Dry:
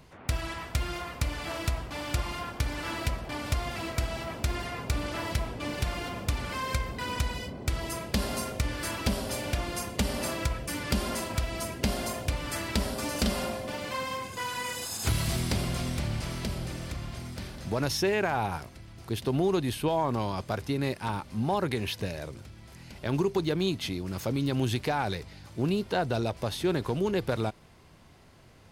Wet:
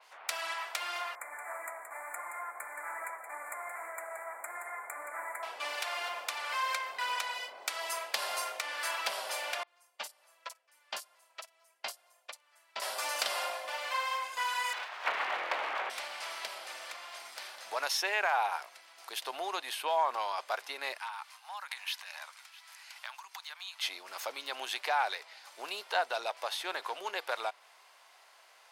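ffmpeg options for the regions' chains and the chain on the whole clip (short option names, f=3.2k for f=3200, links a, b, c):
-filter_complex "[0:a]asettb=1/sr,asplit=3[a][b][c];[a]atrim=end=1.154[d];[b]atrim=start=1.15:end=5.43,asetpts=PTS-STARTPTS,afade=t=in:d=0.004:c=qsin,afade=t=out:st=4.276:d=0.004:c=qsin,flanger=delay=3.1:depth=5.1:regen=72:speed=1.8:shape=sinusoidal,asuperstop=centerf=4100:order=20:qfactor=0.83,aecho=1:1:173:0.376,atrim=end_sample=188748[e];[c]atrim=start=5.426[f];[d][e]acrossfade=d=0.004:c1=hsin:c2=qsin[g];[g][f]acrossfade=d=0.004:c1=qsin:c2=hsin,asettb=1/sr,asplit=3[h][i][j];[h]atrim=end=9.634[k];[i]atrim=start=9.63:end=12.82,asetpts=PTS-STARTPTS,afade=t=in:d=0.004:c=qsin,afade=t=out:st=3.186:d=0.004:c=qsin,agate=range=-31dB:threshold=-26dB:ratio=16:release=100:detection=peak,acrossover=split=4900[l][m];[m]adelay=40[n];[l][n]amix=inputs=2:normalize=0,atrim=end_sample=140679[o];[j]atrim=start=12.816[p];[k][o]acrossfade=d=0.004:c1=hsin:c2=qsin[q];[q][p]acrossfade=d=0.004:c1=qsin:c2=hsin,asettb=1/sr,asplit=3[r][s][t];[r]atrim=end=14.734[u];[s]atrim=start=14.73:end=15.9,asetpts=PTS-STARTPTS,afade=t=in:d=0.004:c=qsin,afade=t=out:st=1.166:d=0.004:c=qsin,lowpass=f=2.3k:w=0.5412,lowpass=f=2.3k:w=1.3066,acontrast=58,aeval=exprs='abs(val(0))':c=same[v];[t]atrim=start=15.896[w];[u][v]acrossfade=d=0.004:c1=hsin:c2=qsin[x];[x][w]acrossfade=d=0.004:c1=qsin:c2=hsin,asettb=1/sr,asplit=3[y][z][aa];[y]atrim=end=20.984[ab];[z]atrim=start=20.98:end=23.83,asetpts=PTS-STARTPTS,afade=t=in:d=0.004:c=qsin,afade=t=out:st=2.846:d=0.004:c=qsin,aecho=1:1:659:0.0668,atrim=end_sample=125685,acompressor=threshold=-31dB:ratio=10:attack=3.2:release=140:knee=1:detection=peak,highpass=f=900:w=0.5412,highpass=f=900:w=1.3066[ac];[aa]atrim=start=23.826[ad];[ab][ac]acrossfade=d=0.004:c1=hsin:c2=qsin[ae];[ae][ad]acrossfade=d=0.004:c1=qsin:c2=hsin,highpass=f=710:w=0.5412,highpass=f=710:w=1.3066,adynamicequalizer=threshold=0.00282:dfrequency=4300:dqfactor=0.7:tfrequency=4300:tqfactor=0.7:attack=5:release=100:ratio=0.375:range=3:mode=cutabove:tftype=highshelf,volume=2dB"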